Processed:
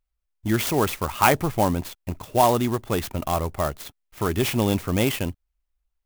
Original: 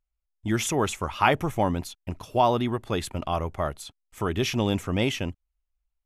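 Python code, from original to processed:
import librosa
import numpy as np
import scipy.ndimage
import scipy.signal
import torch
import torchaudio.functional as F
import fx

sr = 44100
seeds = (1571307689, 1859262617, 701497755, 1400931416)

y = fx.clock_jitter(x, sr, seeds[0], jitter_ms=0.044)
y = y * librosa.db_to_amplitude(3.0)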